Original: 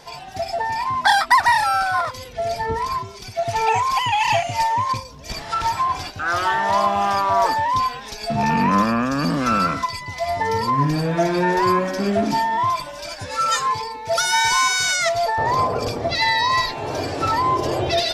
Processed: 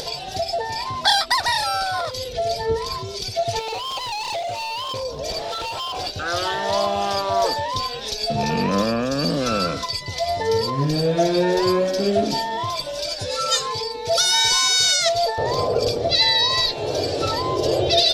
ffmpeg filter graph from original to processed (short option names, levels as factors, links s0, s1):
-filter_complex "[0:a]asettb=1/sr,asplit=3[s0][s1][s2];[s0]atrim=end=3.594[s3];[s1]atrim=start=3.59:end=6.07,asetpts=PTS-STARTPTS,afade=t=in:d=0.004:c=qsin,afade=t=out:st=2.476:d=0.004:c=qsin,equalizer=f=730:t=o:w=2.2:g=12.5,acompressor=threshold=0.0355:ratio=2:attack=3.2:release=140:knee=1:detection=peak,asoftclip=type=hard:threshold=0.0531[s4];[s2]atrim=start=6.066[s5];[s3][s4]acrossfade=d=0.004:c1=hsin:c2=qsin[s6];[s6][s5]acrossfade=d=0.004:c1=qsin:c2=hsin,equalizer=f=250:t=o:w=1:g=-5,equalizer=f=500:t=o:w=1:g=9,equalizer=f=1000:t=o:w=1:g=-9,equalizer=f=2000:t=o:w=1:g=-6,equalizer=f=4000:t=o:w=1:g=9,acompressor=mode=upward:threshold=0.0794:ratio=2.5"